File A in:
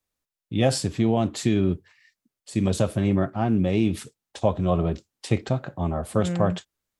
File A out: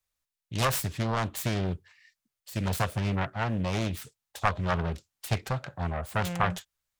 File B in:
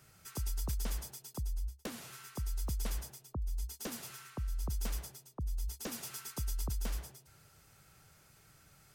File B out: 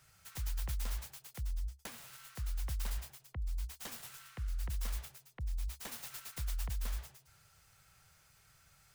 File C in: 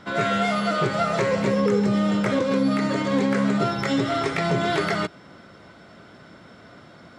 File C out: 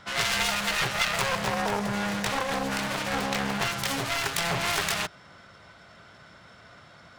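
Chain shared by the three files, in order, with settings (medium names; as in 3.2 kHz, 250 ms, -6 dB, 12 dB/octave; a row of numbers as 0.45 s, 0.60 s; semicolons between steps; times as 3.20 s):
self-modulated delay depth 0.69 ms; peaking EQ 290 Hz -12.5 dB 1.8 oct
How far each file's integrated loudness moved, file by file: -6.0 LU, -1.5 LU, -4.5 LU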